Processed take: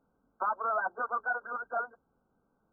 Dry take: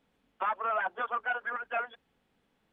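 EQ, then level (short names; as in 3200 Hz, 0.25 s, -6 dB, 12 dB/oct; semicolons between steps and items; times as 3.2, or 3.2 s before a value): brick-wall FIR low-pass 1600 Hz; 0.0 dB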